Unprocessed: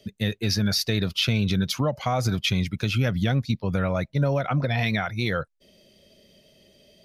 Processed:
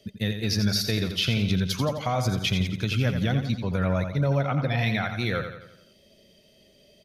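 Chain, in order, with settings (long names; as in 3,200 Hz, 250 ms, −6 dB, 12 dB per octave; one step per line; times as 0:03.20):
repeating echo 86 ms, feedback 48%, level −8 dB
level −2 dB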